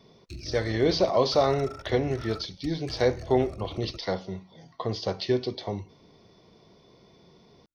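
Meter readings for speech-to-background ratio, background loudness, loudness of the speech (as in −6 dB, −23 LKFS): 15.5 dB, −43.0 LKFS, −27.5 LKFS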